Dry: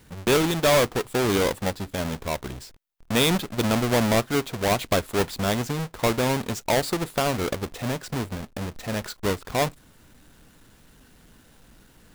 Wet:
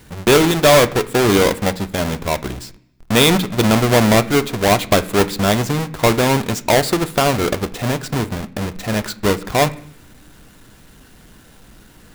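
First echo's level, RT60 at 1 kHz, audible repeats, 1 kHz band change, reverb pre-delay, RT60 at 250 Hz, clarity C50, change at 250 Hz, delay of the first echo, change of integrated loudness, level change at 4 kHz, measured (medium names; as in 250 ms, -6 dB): no echo, 0.70 s, no echo, +8.5 dB, 3 ms, 0.85 s, 18.5 dB, +8.5 dB, no echo, +8.5 dB, +8.0 dB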